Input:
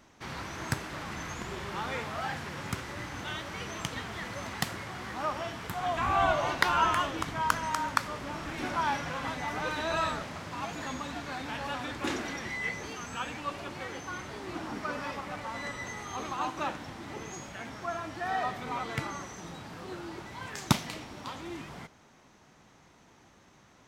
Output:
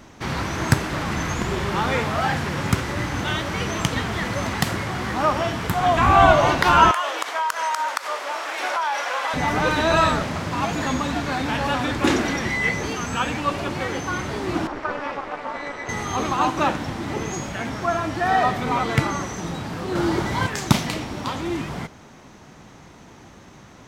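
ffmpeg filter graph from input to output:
-filter_complex "[0:a]asettb=1/sr,asplit=3[s0][s1][s2];[s0]atrim=end=6.914[s3];[s1]atrim=start=6.91:end=9.34,asetpts=PTS-STARTPTS,afade=t=in:d=0.004:c=qsin,afade=t=out:st=2.426:d=0.004:c=qsin,highpass=f=540:w=0.5412,highpass=f=540:w=1.3066,acompressor=threshold=0.0282:ratio=10:attack=3.2:release=140:knee=1:detection=peak[s4];[s2]atrim=start=9.336[s5];[s3][s4]acrossfade=d=0.004:c1=hsin:c2=qsin[s6];[s6][s5]acrossfade=d=0.004:c1=qsin:c2=hsin,asettb=1/sr,asplit=3[s7][s8][s9];[s7]atrim=end=14.674[s10];[s8]atrim=start=14.67:end=15.89,asetpts=PTS-STARTPTS,afade=t=in:d=0.004:c=qsin,afade=t=out:st=1.216:d=0.004:c=qsin,highpass=f=330:w=0.5412,highpass=f=330:w=1.3066,aemphasis=mode=reproduction:type=75fm,tremolo=f=290:d=0.857[s11];[s9]atrim=start=15.886[s12];[s10][s11]acrossfade=d=0.004:c1=hsin:c2=qsin[s13];[s13][s12]acrossfade=d=0.004:c1=qsin:c2=hsin,asettb=1/sr,asplit=3[s14][s15][s16];[s14]atrim=end=19.954[s17];[s15]atrim=start=19.95:end=20.47,asetpts=PTS-STARTPTS,afade=t=in:d=0.004:c=qsin,afade=t=out:st=0.516:d=0.004:c=qsin,bandreject=f=2600:w=12,acontrast=48[s18];[s16]atrim=start=20.466[s19];[s17][s18]acrossfade=d=0.004:c1=hsin:c2=qsin[s20];[s20][s19]acrossfade=d=0.004:c1=qsin:c2=hsin,lowshelf=f=480:g=5,alimiter=level_in=3.98:limit=0.891:release=50:level=0:latency=1,volume=0.891"

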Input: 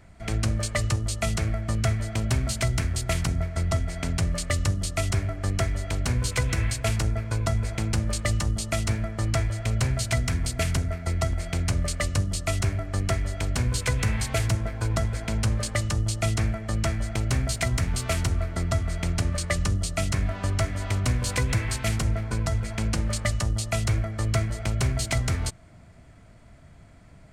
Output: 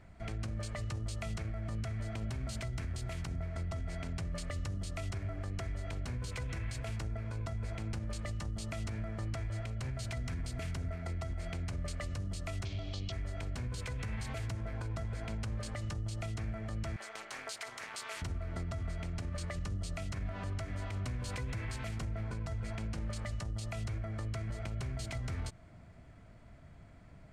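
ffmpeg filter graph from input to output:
-filter_complex "[0:a]asettb=1/sr,asplit=3[s0][s1][s2];[s0]atrim=end=12.654[s3];[s1]atrim=start=12.65:end=13.12,asetpts=PTS-STARTPTS,afade=t=in:d=0.004:c=qsin,afade=t=out:st=0.466:d=0.004:c=qsin,lowpass=f=6000:w=0.5412,lowpass=f=6000:w=1.3066,highshelf=f=2400:t=q:w=3:g=12[s4];[s2]atrim=start=13.116[s5];[s3][s4]acrossfade=d=0.004:c1=hsin:c2=qsin[s6];[s6][s5]acrossfade=d=0.004:c1=qsin:c2=hsin,asettb=1/sr,asplit=3[s7][s8][s9];[s7]atrim=end=16.964[s10];[s8]atrim=start=16.96:end=18.22,asetpts=PTS-STARTPTS,afade=t=in:d=0.004:c=qsin,afade=t=out:st=1.256:d=0.004:c=qsin,highpass=850,tremolo=f=220:d=0.857,acontrast=49[s11];[s9]atrim=start=18.216[s12];[s10][s11]acrossfade=d=0.004:c1=hsin:c2=qsin[s13];[s13][s12]acrossfade=d=0.004:c1=qsin:c2=hsin,highshelf=f=5800:g=-10.5,acompressor=threshold=0.0501:ratio=6,alimiter=level_in=1.26:limit=0.0631:level=0:latency=1:release=50,volume=0.794,volume=0.596"

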